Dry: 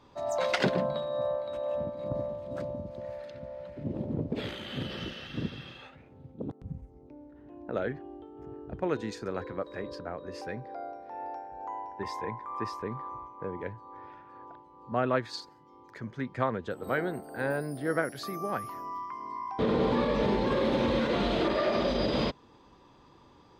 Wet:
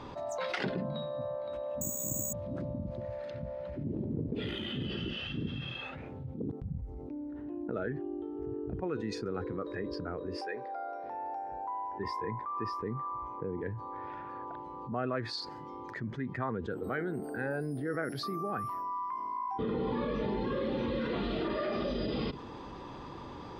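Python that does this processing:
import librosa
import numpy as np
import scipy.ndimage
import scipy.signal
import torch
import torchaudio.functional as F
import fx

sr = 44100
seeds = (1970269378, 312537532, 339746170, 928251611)

y = fx.resample_bad(x, sr, factor=6, down='none', up='zero_stuff', at=(1.81, 2.33))
y = fx.highpass(y, sr, hz=410.0, slope=12, at=(10.37, 11.04))
y = fx.noise_reduce_blind(y, sr, reduce_db=10)
y = fx.lowpass(y, sr, hz=3300.0, slope=6)
y = fx.env_flatten(y, sr, amount_pct=70)
y = y * 10.0 ** (-8.5 / 20.0)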